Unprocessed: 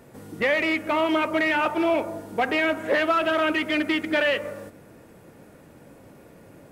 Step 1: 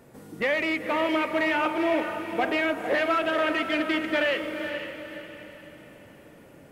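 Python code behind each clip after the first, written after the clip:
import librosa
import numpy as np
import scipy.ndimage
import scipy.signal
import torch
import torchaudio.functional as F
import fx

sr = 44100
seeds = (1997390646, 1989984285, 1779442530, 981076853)

y = fx.hum_notches(x, sr, base_hz=50, count=2)
y = fx.echo_diffused(y, sr, ms=479, feedback_pct=41, wet_db=-7.5)
y = y * 10.0 ** (-3.0 / 20.0)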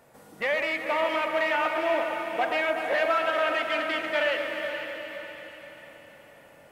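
y = fx.low_shelf_res(x, sr, hz=480.0, db=-7.5, q=1.5)
y = fx.echo_alternate(y, sr, ms=122, hz=1700.0, feedback_pct=80, wet_db=-7.0)
y = y * 10.0 ** (-1.5 / 20.0)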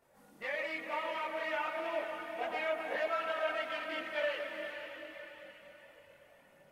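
y = fx.notch(x, sr, hz=7600.0, q=29.0)
y = fx.chorus_voices(y, sr, voices=4, hz=0.47, base_ms=23, depth_ms=2.8, mix_pct=60)
y = y * 10.0 ** (-7.5 / 20.0)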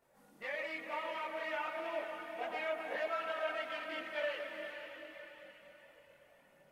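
y = fx.peak_eq(x, sr, hz=89.0, db=-7.5, octaves=0.2)
y = y * 10.0 ** (-3.0 / 20.0)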